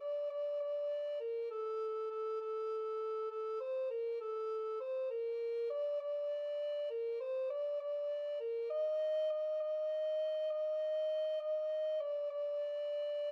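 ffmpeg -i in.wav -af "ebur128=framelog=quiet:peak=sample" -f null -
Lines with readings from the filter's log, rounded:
Integrated loudness:
  I:         -38.5 LUFS
  Threshold: -48.5 LUFS
Loudness range:
  LRA:         2.9 LU
  Threshold: -58.5 LUFS
  LRA low:   -39.8 LUFS
  LRA high:  -36.9 LUFS
Sample peak:
  Peak:      -30.4 dBFS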